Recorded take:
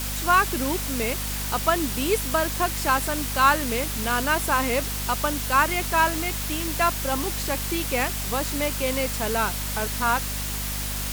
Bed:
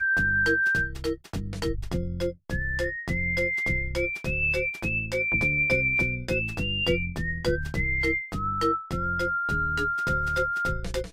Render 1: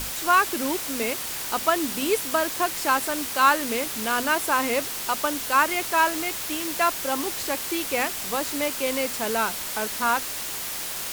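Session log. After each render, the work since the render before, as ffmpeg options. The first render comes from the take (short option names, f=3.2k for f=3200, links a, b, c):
-af "bandreject=f=50:t=h:w=6,bandreject=f=100:t=h:w=6,bandreject=f=150:t=h:w=6,bandreject=f=200:t=h:w=6,bandreject=f=250:t=h:w=6"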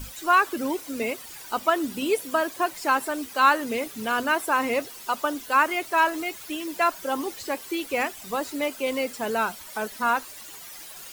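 -af "afftdn=nr=14:nf=-32"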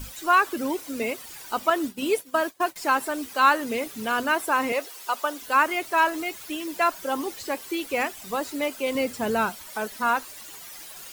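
-filter_complex "[0:a]asettb=1/sr,asplit=3[a][b][c];[a]atrim=end=1.704[d];[b]atrim=start=1.7:end=2.76,asetpts=PTS-STARTPTS,afade=t=in:d=0.004:c=qsin,afade=t=out:st=1.056:d=0.004:c=qsin,agate=range=-33dB:threshold=-29dB:ratio=3:release=100:detection=peak[e];[c]atrim=start=2.756[f];[d][e]acrossfade=d=0.004:c1=hsin:c2=qsin[g];[g][f]acrossfade=d=0.004:c1=qsin:c2=hsin,asettb=1/sr,asplit=3[h][i][j];[h]atrim=end=4.724[k];[i]atrim=start=4.72:end=5.42,asetpts=PTS-STARTPTS,afade=t=in:d=0.004:c=qsin,afade=t=out:st=0.696:d=0.004:c=qsin,highpass=420[l];[j]atrim=start=5.416[m];[k][l]acrossfade=d=0.004:c1=hsin:c2=qsin[n];[n][m]acrossfade=d=0.004:c1=qsin:c2=hsin,asettb=1/sr,asplit=3[o][p][q];[o]atrim=end=8.954[r];[p]atrim=start=8.95:end=9.5,asetpts=PTS-STARTPTS,afade=t=in:d=0.004:c=qsin,afade=t=out:st=0.546:d=0.004:c=qsin,equalizer=f=86:w=0.51:g=12[s];[q]atrim=start=9.496[t];[r][s]acrossfade=d=0.004:c1=hsin:c2=qsin[u];[u][t]acrossfade=d=0.004:c1=qsin:c2=hsin"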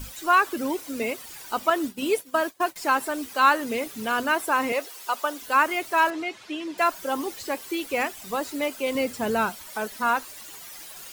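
-filter_complex "[0:a]asettb=1/sr,asplit=3[a][b][c];[a]atrim=end=6.104[d];[b]atrim=start=6.1:end=6.78,asetpts=PTS-STARTPTS,afade=t=in:d=0.004:c=qsin,afade=t=out:st=0.676:d=0.004:c=qsin,highpass=110,lowpass=4.5k[e];[c]atrim=start=6.776[f];[d][e]acrossfade=d=0.004:c1=hsin:c2=qsin[g];[g][f]acrossfade=d=0.004:c1=qsin:c2=hsin"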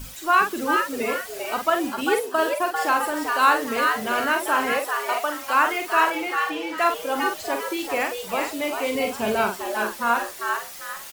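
-filter_complex "[0:a]asplit=2[a][b];[b]adelay=47,volume=-6dB[c];[a][c]amix=inputs=2:normalize=0,asplit=2[d][e];[e]asplit=4[f][g][h][i];[f]adelay=396,afreqshift=150,volume=-4.5dB[j];[g]adelay=792,afreqshift=300,volume=-14.1dB[k];[h]adelay=1188,afreqshift=450,volume=-23.8dB[l];[i]adelay=1584,afreqshift=600,volume=-33.4dB[m];[j][k][l][m]amix=inputs=4:normalize=0[n];[d][n]amix=inputs=2:normalize=0"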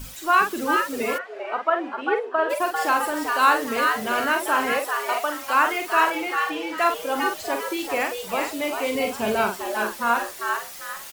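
-filter_complex "[0:a]asplit=3[a][b][c];[a]afade=t=out:st=1.17:d=0.02[d];[b]asuperpass=centerf=880:order=4:qfactor=0.51,afade=t=in:st=1.17:d=0.02,afade=t=out:st=2.49:d=0.02[e];[c]afade=t=in:st=2.49:d=0.02[f];[d][e][f]amix=inputs=3:normalize=0"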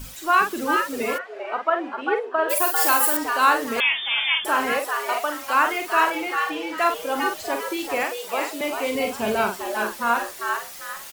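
-filter_complex "[0:a]asettb=1/sr,asplit=3[a][b][c];[a]atrim=end=2.484[d];[b]atrim=start=2.48:end=3.17,asetpts=PTS-STARTPTS,afade=t=in:d=0.004:c=qsin,afade=t=out:st=0.686:d=0.004:c=qsin,aemphasis=mode=production:type=75fm[e];[c]atrim=start=3.166[f];[d][e]acrossfade=d=0.004:c1=hsin:c2=qsin[g];[g][f]acrossfade=d=0.004:c1=qsin:c2=hsin,asettb=1/sr,asplit=3[h][i][j];[h]atrim=end=3.804[k];[i]atrim=start=3.8:end=4.45,asetpts=PTS-STARTPTS,afade=t=in:d=0.004:c=qsin,afade=t=out:st=0.646:d=0.004:c=qsin,lowpass=f=3.2k:t=q:w=0.5098,lowpass=f=3.2k:t=q:w=0.6013,lowpass=f=3.2k:t=q:w=0.9,lowpass=f=3.2k:t=q:w=2.563,afreqshift=-3800[l];[j]atrim=start=4.446[m];[k][l]acrossfade=d=0.004:c1=hsin:c2=qsin[n];[n][m]acrossfade=d=0.004:c1=qsin:c2=hsin,asettb=1/sr,asplit=3[o][p][q];[o]atrim=end=8.034[r];[p]atrim=start=8.03:end=8.61,asetpts=PTS-STARTPTS,afade=t=in:d=0.004:c=qsin,afade=t=out:st=0.576:d=0.004:c=qsin,highpass=f=280:w=0.5412,highpass=f=280:w=1.3066[s];[q]atrim=start=8.606[t];[r][s]acrossfade=d=0.004:c1=hsin:c2=qsin[u];[u][t]acrossfade=d=0.004:c1=qsin:c2=hsin"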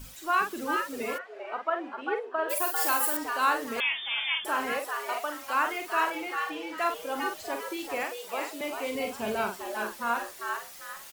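-af "volume=-7.5dB"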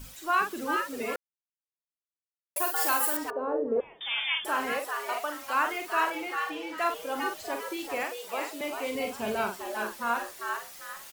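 -filter_complex "[0:a]asettb=1/sr,asplit=3[a][b][c];[a]atrim=end=3.304[d];[b]atrim=start=3.3:end=4.01,asetpts=PTS-STARTPTS,afade=t=in:d=0.004:c=qsin,afade=t=out:st=0.706:d=0.004:c=qsin,lowpass=f=480:t=q:w=3.5[e];[c]atrim=start=4.006[f];[d][e]acrossfade=d=0.004:c1=hsin:c2=qsin[g];[g][f]acrossfade=d=0.004:c1=qsin:c2=hsin,asettb=1/sr,asplit=3[h][i][j];[h]atrim=end=4.614[k];[i]atrim=start=4.61:end=5.93,asetpts=PTS-STARTPTS,afade=t=in:d=0.004:c=qsin,afade=t=out:st=1.316:d=0.004:c=qsin,acrusher=bits=8:mix=0:aa=0.5[l];[j]atrim=start=5.926[m];[k][l]acrossfade=d=0.004:c1=hsin:c2=qsin[n];[n][m]acrossfade=d=0.004:c1=qsin:c2=hsin,asplit=3[o][p][q];[o]atrim=end=1.16,asetpts=PTS-STARTPTS,afade=t=out:st=1.156:d=0.004:c=hsin[r];[p]atrim=start=1.16:end=2.56,asetpts=PTS-STARTPTS,volume=0[s];[q]atrim=start=2.56,asetpts=PTS-STARTPTS,afade=t=in:d=0.004:c=hsin[t];[r][s][t]concat=n=3:v=0:a=1"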